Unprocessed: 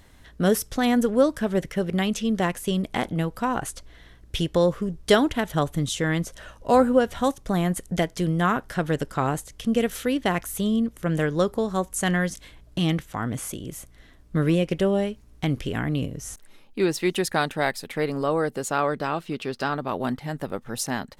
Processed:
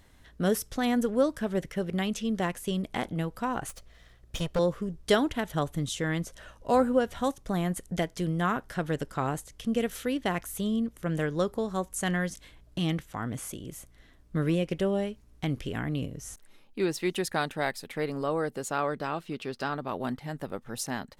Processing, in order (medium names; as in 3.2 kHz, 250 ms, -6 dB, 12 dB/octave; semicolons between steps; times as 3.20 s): 3.69–4.59 s: comb filter that takes the minimum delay 1.6 ms; trim -5.5 dB